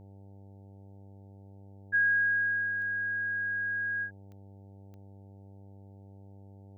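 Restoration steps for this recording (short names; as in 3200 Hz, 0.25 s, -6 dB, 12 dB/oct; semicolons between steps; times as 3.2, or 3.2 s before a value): de-click; de-hum 98.5 Hz, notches 9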